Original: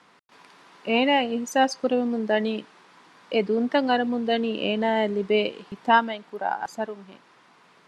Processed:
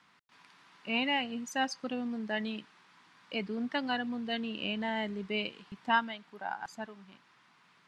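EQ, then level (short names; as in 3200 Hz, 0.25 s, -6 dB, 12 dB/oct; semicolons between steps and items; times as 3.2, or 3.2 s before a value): bell 480 Hz -13 dB 1.7 oct; high shelf 6700 Hz -7.5 dB; -4.0 dB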